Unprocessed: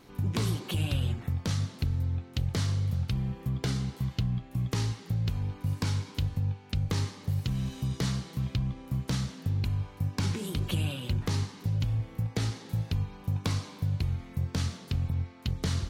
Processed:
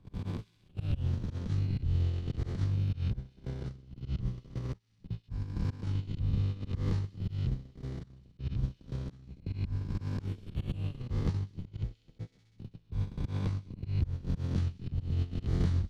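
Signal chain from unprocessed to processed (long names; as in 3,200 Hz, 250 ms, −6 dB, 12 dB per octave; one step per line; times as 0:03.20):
peak hold with a rise ahead of every peak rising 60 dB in 2.45 s
RIAA equalisation playback
hum removal 54.37 Hz, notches 5
noise gate −13 dBFS, range −42 dB
harmonic and percussive parts rebalanced percussive +4 dB
low-shelf EQ 190 Hz −4 dB
delay with a high-pass on its return 65 ms, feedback 72%, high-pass 2,700 Hz, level −20 dB
volume swells 201 ms
multiband upward and downward compressor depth 40%
level −8 dB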